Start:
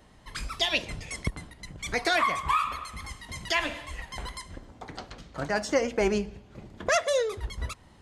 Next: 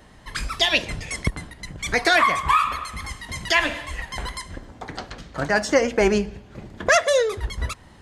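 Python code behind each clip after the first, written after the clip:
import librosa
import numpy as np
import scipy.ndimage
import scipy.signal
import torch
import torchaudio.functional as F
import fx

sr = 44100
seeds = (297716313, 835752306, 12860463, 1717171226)

y = fx.peak_eq(x, sr, hz=1700.0, db=4.0, octaves=0.35)
y = F.gain(torch.from_numpy(y), 6.5).numpy()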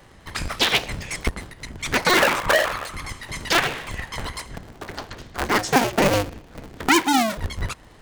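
y = fx.cycle_switch(x, sr, every=2, mode='inverted')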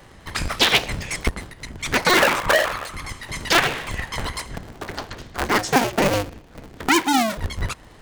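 y = fx.rider(x, sr, range_db=4, speed_s=2.0)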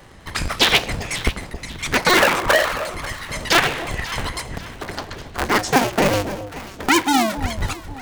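y = fx.echo_alternate(x, sr, ms=270, hz=880.0, feedback_pct=62, wet_db=-11)
y = F.gain(torch.from_numpy(y), 1.5).numpy()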